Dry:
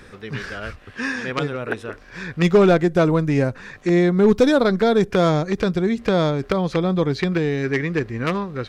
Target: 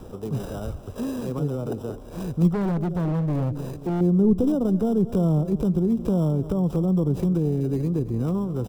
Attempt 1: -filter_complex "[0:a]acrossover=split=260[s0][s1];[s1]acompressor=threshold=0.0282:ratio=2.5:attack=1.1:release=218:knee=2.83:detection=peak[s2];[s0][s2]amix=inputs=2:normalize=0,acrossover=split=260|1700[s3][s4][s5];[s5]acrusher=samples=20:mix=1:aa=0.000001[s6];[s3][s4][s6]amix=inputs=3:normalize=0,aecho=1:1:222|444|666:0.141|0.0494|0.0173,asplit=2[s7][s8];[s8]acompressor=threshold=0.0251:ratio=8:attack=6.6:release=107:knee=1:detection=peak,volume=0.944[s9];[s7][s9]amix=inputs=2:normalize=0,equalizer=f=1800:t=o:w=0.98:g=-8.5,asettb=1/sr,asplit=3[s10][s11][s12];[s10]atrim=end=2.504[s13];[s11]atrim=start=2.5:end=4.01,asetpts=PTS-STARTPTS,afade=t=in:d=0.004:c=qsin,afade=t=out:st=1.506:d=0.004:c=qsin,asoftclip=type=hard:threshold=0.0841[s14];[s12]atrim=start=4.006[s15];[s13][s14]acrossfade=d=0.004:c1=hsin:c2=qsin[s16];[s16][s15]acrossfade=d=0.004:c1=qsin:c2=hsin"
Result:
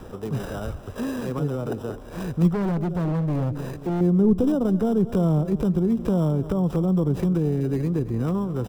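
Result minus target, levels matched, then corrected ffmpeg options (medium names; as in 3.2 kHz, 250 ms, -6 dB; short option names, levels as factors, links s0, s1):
2 kHz band +5.0 dB
-filter_complex "[0:a]acrossover=split=260[s0][s1];[s1]acompressor=threshold=0.0282:ratio=2.5:attack=1.1:release=218:knee=2.83:detection=peak[s2];[s0][s2]amix=inputs=2:normalize=0,acrossover=split=260|1700[s3][s4][s5];[s5]acrusher=samples=20:mix=1:aa=0.000001[s6];[s3][s4][s6]amix=inputs=3:normalize=0,aecho=1:1:222|444|666:0.141|0.0494|0.0173,asplit=2[s7][s8];[s8]acompressor=threshold=0.0251:ratio=8:attack=6.6:release=107:knee=1:detection=peak,volume=0.944[s9];[s7][s9]amix=inputs=2:normalize=0,equalizer=f=1800:t=o:w=0.98:g=-19,asettb=1/sr,asplit=3[s10][s11][s12];[s10]atrim=end=2.504[s13];[s11]atrim=start=2.5:end=4.01,asetpts=PTS-STARTPTS,afade=t=in:d=0.004:c=qsin,afade=t=out:st=1.506:d=0.004:c=qsin,asoftclip=type=hard:threshold=0.0841[s14];[s12]atrim=start=4.006[s15];[s13][s14]acrossfade=d=0.004:c1=hsin:c2=qsin[s16];[s16][s15]acrossfade=d=0.004:c1=qsin:c2=hsin"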